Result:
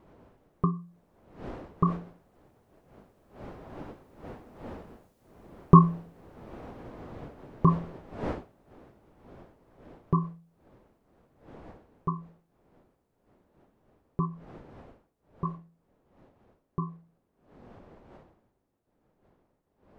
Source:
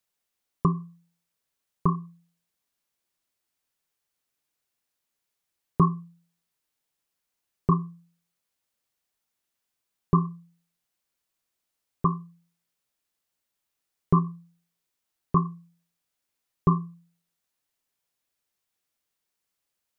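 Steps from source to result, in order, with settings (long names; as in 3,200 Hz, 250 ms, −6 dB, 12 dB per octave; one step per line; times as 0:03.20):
wind on the microphone 540 Hz −46 dBFS
source passing by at 0:05.09, 6 m/s, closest 9 metres
level +6.5 dB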